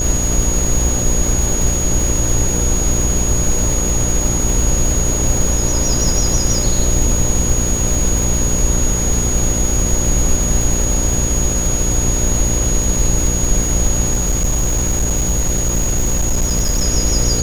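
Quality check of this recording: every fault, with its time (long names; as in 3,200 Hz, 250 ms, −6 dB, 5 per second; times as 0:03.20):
mains buzz 60 Hz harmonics 10 −21 dBFS
surface crackle 340 per second −21 dBFS
whistle 6,700 Hz −19 dBFS
0:14.13–0:16.84: clipping −11.5 dBFS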